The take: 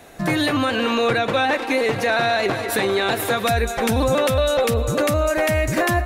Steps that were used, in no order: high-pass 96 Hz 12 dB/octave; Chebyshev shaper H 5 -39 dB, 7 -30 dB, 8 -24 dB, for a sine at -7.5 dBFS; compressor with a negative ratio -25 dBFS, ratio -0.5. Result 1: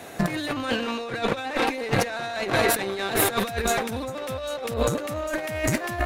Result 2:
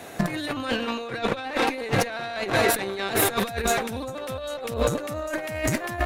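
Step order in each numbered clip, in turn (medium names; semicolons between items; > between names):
high-pass > Chebyshev shaper > compressor with a negative ratio; high-pass > compressor with a negative ratio > Chebyshev shaper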